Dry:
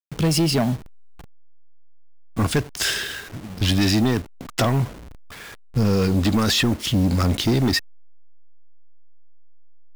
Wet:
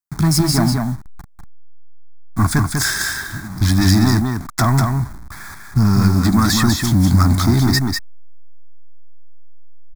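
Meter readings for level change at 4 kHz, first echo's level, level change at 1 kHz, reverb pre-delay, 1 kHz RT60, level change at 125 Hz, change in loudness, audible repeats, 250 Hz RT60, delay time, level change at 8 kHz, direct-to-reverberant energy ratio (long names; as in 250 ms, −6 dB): +1.0 dB, −4.5 dB, +7.0 dB, no reverb audible, no reverb audible, +7.5 dB, +5.0 dB, 1, no reverb audible, 196 ms, +6.5 dB, no reverb audible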